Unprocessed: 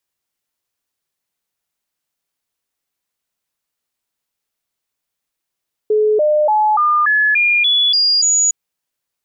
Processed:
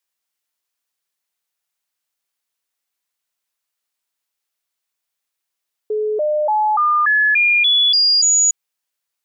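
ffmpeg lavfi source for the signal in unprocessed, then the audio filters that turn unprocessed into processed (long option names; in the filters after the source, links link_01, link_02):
-f lavfi -i "aevalsrc='0.299*clip(min(mod(t,0.29),0.29-mod(t,0.29))/0.005,0,1)*sin(2*PI*427*pow(2,floor(t/0.29)/2)*mod(t,0.29))':duration=2.61:sample_rate=44100"
-af "lowshelf=frequency=450:gain=-12"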